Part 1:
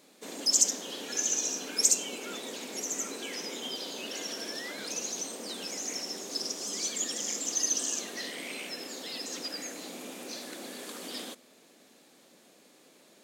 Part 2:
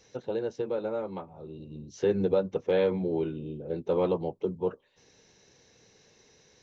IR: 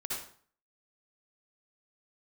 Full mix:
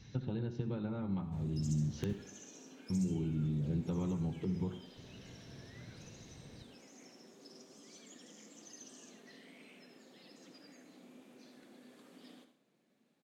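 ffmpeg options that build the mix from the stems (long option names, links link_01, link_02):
-filter_complex "[0:a]flanger=delay=4.5:depth=3.6:regen=-62:speed=0.24:shape=sinusoidal,adelay=1100,volume=-16.5dB,asplit=2[link_01][link_02];[link_02]volume=-8.5dB[link_03];[1:a]equalizer=frequency=125:width_type=o:width=1:gain=5,equalizer=frequency=250:width_type=o:width=1:gain=4,equalizer=frequency=500:width_type=o:width=1:gain=-12,equalizer=frequency=4000:width_type=o:width=1:gain=6,acompressor=threshold=-41dB:ratio=6,aeval=exprs='(mod(23.7*val(0)+1,2)-1)/23.7':channel_layout=same,volume=-2dB,asplit=3[link_04][link_05][link_06];[link_04]atrim=end=2.13,asetpts=PTS-STARTPTS,afade=type=out:start_time=2.126:duration=0.004:curve=hsin[link_07];[link_05]atrim=start=2.13:end=2.9,asetpts=PTS-STARTPTS,volume=0[link_08];[link_06]atrim=start=2.9,asetpts=PTS-STARTPTS,afade=type=in:duration=0.004:curve=hsin[link_09];[link_07][link_08][link_09]concat=n=3:v=0:a=1,asplit=3[link_10][link_11][link_12];[link_11]volume=-9.5dB[link_13];[link_12]apad=whole_len=632029[link_14];[link_01][link_14]sidechaincompress=threshold=-47dB:ratio=8:attack=48:release=101[link_15];[2:a]atrim=start_sample=2205[link_16];[link_03][link_13]amix=inputs=2:normalize=0[link_17];[link_17][link_16]afir=irnorm=-1:irlink=0[link_18];[link_15][link_10][link_18]amix=inputs=3:normalize=0,bass=frequency=250:gain=13,treble=frequency=4000:gain=-9"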